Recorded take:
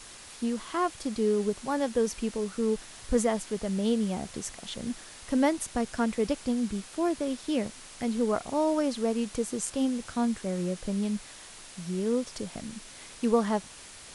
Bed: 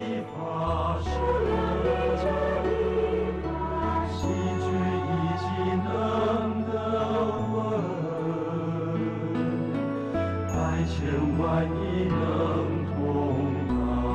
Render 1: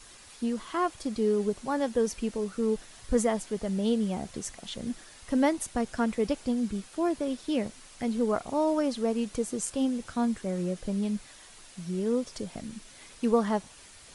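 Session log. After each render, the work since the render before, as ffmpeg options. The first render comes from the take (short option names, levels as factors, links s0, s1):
-af "afftdn=nr=6:nf=-48"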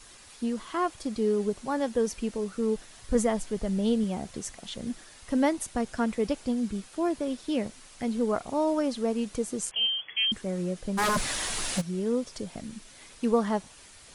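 -filter_complex "[0:a]asettb=1/sr,asplit=3[s0][s1][s2];[s0]atrim=end=3.154[s3];[s1]atrim=start=3.15:end=4.04,asetpts=PTS-STARTPTS,afade=t=in:d=0.004:c=qsin,afade=t=out:st=0.886:d=0.004:c=qsin,lowshelf=f=78:g=12[s4];[s2]atrim=start=4.036[s5];[s3][s4]acrossfade=d=0.004:c1=hsin:c2=qsin[s6];[s6][s5]acrossfade=d=0.004:c1=qsin:c2=hsin,asettb=1/sr,asplit=3[s7][s8][s9];[s7]atrim=end=9.714[s10];[s8]atrim=start=9.71:end=10.32,asetpts=PTS-STARTPTS,afade=t=in:d=0.004:c=qsin,afade=t=out:st=0.606:d=0.004:c=qsin,lowpass=f=2900:t=q:w=0.5098,lowpass=f=2900:t=q:w=0.6013,lowpass=f=2900:t=q:w=0.9,lowpass=f=2900:t=q:w=2.563,afreqshift=-3400[s11];[s9]atrim=start=10.316[s12];[s10][s11]acrossfade=d=0.004:c1=hsin:c2=qsin[s13];[s13][s12]acrossfade=d=0.004:c1=qsin:c2=hsin,asplit=3[s14][s15][s16];[s14]afade=t=out:st=10.97:d=0.02[s17];[s15]aeval=exprs='0.0841*sin(PI/2*6.31*val(0)/0.0841)':c=same,afade=t=in:st=10.97:d=0.02,afade=t=out:st=11.8:d=0.02[s18];[s16]afade=t=in:st=11.8:d=0.02[s19];[s17][s18][s19]amix=inputs=3:normalize=0"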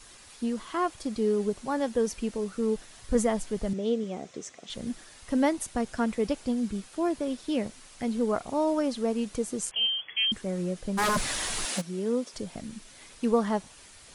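-filter_complex "[0:a]asettb=1/sr,asplit=3[s0][s1][s2];[s0]atrim=end=3.734[s3];[s1]atrim=start=3.73:end=4.7,asetpts=PTS-STARTPTS,afade=t=in:d=0.004:c=qsin,afade=t=out:st=0.966:d=0.004:c=qsin,highpass=200,equalizer=f=210:t=q:w=4:g=-5,equalizer=f=440:t=q:w=4:g=3,equalizer=f=900:t=q:w=4:g=-8,equalizer=f=1600:t=q:w=4:g=-5,equalizer=f=2900:t=q:w=4:g=-4,equalizer=f=4500:t=q:w=4:g=-8,lowpass=f=6900:w=0.5412,lowpass=f=6900:w=1.3066[s4];[s2]atrim=start=4.696[s5];[s3][s4]acrossfade=d=0.004:c1=hsin:c2=qsin[s6];[s6][s5]acrossfade=d=0.004:c1=qsin:c2=hsin,asettb=1/sr,asplit=3[s7][s8][s9];[s7]atrim=end=11.654[s10];[s8]atrim=start=11.65:end=12.34,asetpts=PTS-STARTPTS,afade=t=in:d=0.004:c=qsin,afade=t=out:st=0.686:d=0.004:c=qsin,highpass=f=190:w=0.5412,highpass=f=190:w=1.3066[s11];[s9]atrim=start=12.336[s12];[s10][s11]acrossfade=d=0.004:c1=hsin:c2=qsin[s13];[s13][s12]acrossfade=d=0.004:c1=qsin:c2=hsin"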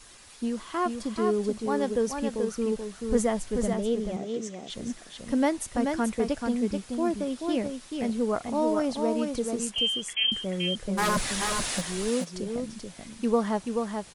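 -af "aecho=1:1:433:0.562"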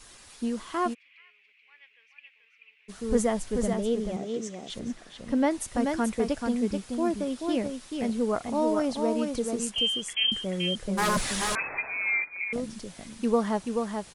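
-filter_complex "[0:a]asplit=3[s0][s1][s2];[s0]afade=t=out:st=0.93:d=0.02[s3];[s1]asuperpass=centerf=2400:order=4:qfactor=3.9,afade=t=in:st=0.93:d=0.02,afade=t=out:st=2.88:d=0.02[s4];[s2]afade=t=in:st=2.88:d=0.02[s5];[s3][s4][s5]amix=inputs=3:normalize=0,asettb=1/sr,asplit=3[s6][s7][s8];[s6]atrim=end=4.794[s9];[s7]atrim=start=4.79:end=5.51,asetpts=PTS-STARTPTS,afade=t=in:d=0.004:c=qsin,afade=t=out:st=0.716:d=0.004:c=qsin,lowpass=f=3500:p=1[s10];[s8]atrim=start=5.506[s11];[s9][s10]acrossfade=d=0.004:c1=hsin:c2=qsin[s12];[s12][s11]acrossfade=d=0.004:c1=qsin:c2=hsin,asettb=1/sr,asplit=3[s13][s14][s15];[s13]atrim=end=11.554[s16];[s14]atrim=start=11.55:end=12.53,asetpts=PTS-STARTPTS,afade=t=in:d=0.004:c=qsin,afade=t=out:st=0.976:d=0.004:c=qsin,lowpass=f=2200:t=q:w=0.5098,lowpass=f=2200:t=q:w=0.6013,lowpass=f=2200:t=q:w=0.9,lowpass=f=2200:t=q:w=2.563,afreqshift=-2600[s17];[s15]atrim=start=12.526[s18];[s16][s17]acrossfade=d=0.004:c1=hsin:c2=qsin[s19];[s19][s18]acrossfade=d=0.004:c1=qsin:c2=hsin"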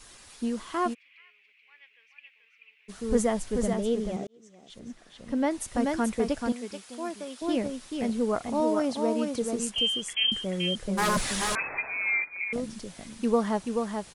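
-filter_complex "[0:a]asettb=1/sr,asplit=3[s0][s1][s2];[s0]atrim=end=6.524[s3];[s1]atrim=start=6.52:end=7.42,asetpts=PTS-STARTPTS,afade=t=in:d=0.004:c=qsin,afade=t=out:st=0.896:d=0.004:c=qsin,highpass=f=950:p=1[s4];[s2]atrim=start=7.416[s5];[s3][s4]acrossfade=d=0.004:c1=hsin:c2=qsin[s6];[s6][s5]acrossfade=d=0.004:c1=qsin:c2=hsin,asettb=1/sr,asplit=3[s7][s8][s9];[s7]atrim=end=8.604[s10];[s8]atrim=start=8.6:end=9.42,asetpts=PTS-STARTPTS,afade=t=in:d=0.004:c=qsin,afade=t=out:st=0.816:d=0.004:c=qsin,highpass=110[s11];[s9]atrim=start=9.416[s12];[s10][s11]acrossfade=d=0.004:c1=hsin:c2=qsin[s13];[s13][s12]acrossfade=d=0.004:c1=qsin:c2=hsin,asplit=2[s14][s15];[s14]atrim=end=4.27,asetpts=PTS-STARTPTS,afade=t=out:st=4.266:d=0.004:c=hsin[s16];[s15]atrim=start=4.27,asetpts=PTS-STARTPTS,afade=t=in:d=1.51[s17];[s16][s17]concat=n=2:v=0:a=1"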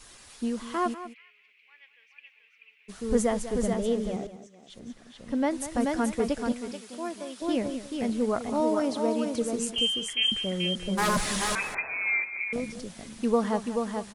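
-af "aecho=1:1:195:0.224"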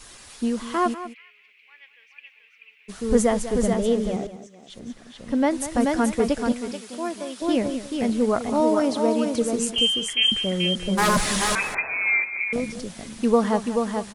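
-af "volume=1.88"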